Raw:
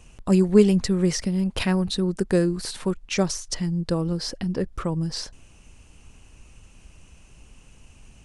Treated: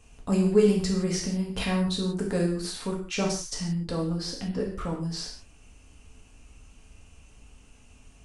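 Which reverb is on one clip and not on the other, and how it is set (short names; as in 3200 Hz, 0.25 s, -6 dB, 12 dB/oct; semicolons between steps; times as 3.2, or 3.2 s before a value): non-linear reverb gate 0.2 s falling, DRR -2.5 dB; gain -7 dB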